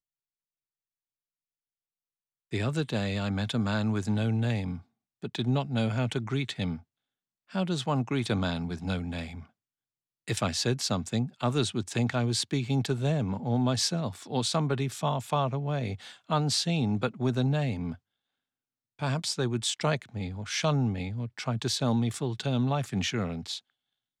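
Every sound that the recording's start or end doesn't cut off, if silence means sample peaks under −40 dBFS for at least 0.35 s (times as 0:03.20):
0:02.52–0:04.79
0:05.23–0:06.78
0:07.53–0:09.43
0:10.28–0:17.95
0:19.00–0:23.58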